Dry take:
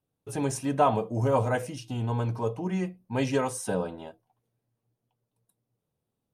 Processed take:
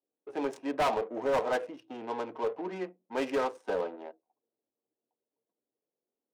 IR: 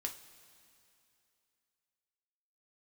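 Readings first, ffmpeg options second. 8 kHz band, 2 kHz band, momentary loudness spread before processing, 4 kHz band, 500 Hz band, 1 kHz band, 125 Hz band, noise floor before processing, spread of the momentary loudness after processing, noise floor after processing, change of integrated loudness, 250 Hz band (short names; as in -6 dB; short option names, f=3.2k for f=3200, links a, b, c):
under -10 dB, -1.0 dB, 11 LU, -2.0 dB, -2.0 dB, -3.5 dB, -23.5 dB, -84 dBFS, 12 LU, under -85 dBFS, -4.5 dB, -7.0 dB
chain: -af "adynamicsmooth=sensitivity=6:basefreq=690,highpass=f=310:w=0.5412,highpass=f=310:w=1.3066,volume=23.5dB,asoftclip=hard,volume=-23.5dB"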